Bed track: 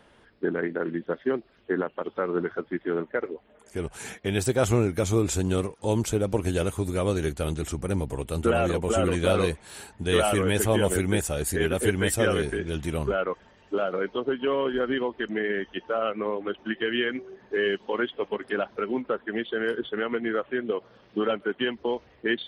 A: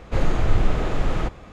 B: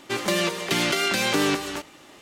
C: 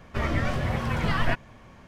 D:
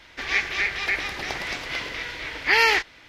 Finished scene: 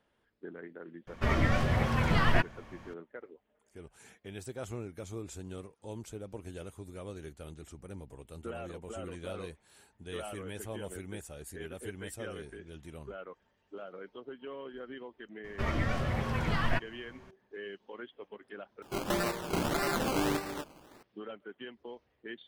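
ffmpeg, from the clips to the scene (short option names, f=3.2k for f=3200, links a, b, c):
-filter_complex "[3:a]asplit=2[a][b];[0:a]volume=-18dB[c];[2:a]acrusher=samples=19:mix=1:aa=0.000001:lfo=1:lforange=11.4:lforate=1.7[d];[c]asplit=2[e][f];[e]atrim=end=18.824[g];[d]atrim=end=2.21,asetpts=PTS-STARTPTS,volume=-7.5dB[h];[f]atrim=start=21.026[i];[a]atrim=end=1.87,asetpts=PTS-STARTPTS,volume=-1dB,afade=t=in:d=0.004:c=hsin,afade=t=out:st=1.866:d=0.004:c=hsin,adelay=1070[j];[b]atrim=end=1.87,asetpts=PTS-STARTPTS,volume=-5dB,afade=t=in:d=0.004:c=hsin,afade=t=out:st=1.866:d=0.004:c=hsin,adelay=15440[k];[g][h]acrossfade=d=0.004:c1=hsin:c2=hsin[l];[l][i]acrossfade=d=0.004:c1=hsin:c2=hsin[m];[m][j][k]amix=inputs=3:normalize=0"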